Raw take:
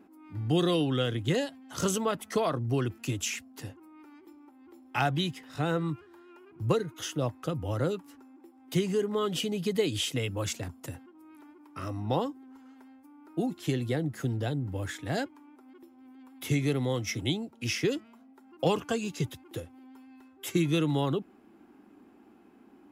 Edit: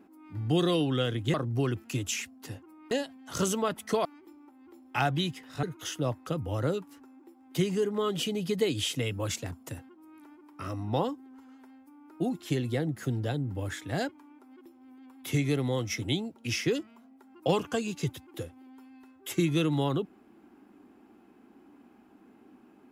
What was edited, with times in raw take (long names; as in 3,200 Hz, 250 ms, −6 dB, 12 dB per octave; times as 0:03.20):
0:01.34–0:02.48: move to 0:04.05
0:05.63–0:06.80: remove